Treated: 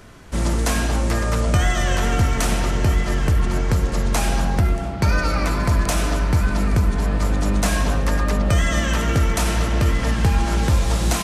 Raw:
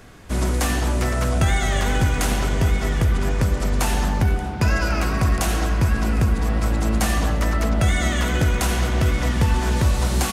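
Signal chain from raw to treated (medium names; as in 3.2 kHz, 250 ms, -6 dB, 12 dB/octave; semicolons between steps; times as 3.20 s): speed mistake 48 kHz file played as 44.1 kHz; trim +1 dB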